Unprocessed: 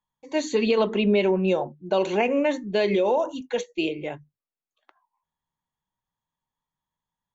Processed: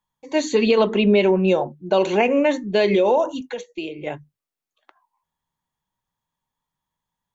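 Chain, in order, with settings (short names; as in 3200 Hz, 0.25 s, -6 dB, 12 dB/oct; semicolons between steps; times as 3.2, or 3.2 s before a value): 3.42–4.07 compressor 3:1, threshold -34 dBFS, peak gain reduction 10.5 dB; gain +4.5 dB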